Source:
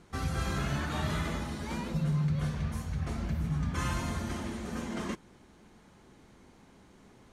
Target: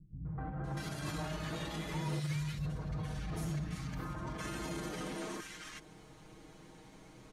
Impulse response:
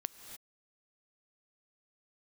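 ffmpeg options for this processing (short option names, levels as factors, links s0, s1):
-filter_complex "[0:a]aecho=1:1:6.4:0.95,alimiter=level_in=2.24:limit=0.0631:level=0:latency=1:release=55,volume=0.447,acrossover=split=200|1400[s0][s1][s2];[s1]adelay=250[s3];[s2]adelay=640[s4];[s0][s3][s4]amix=inputs=3:normalize=0,volume=1.12"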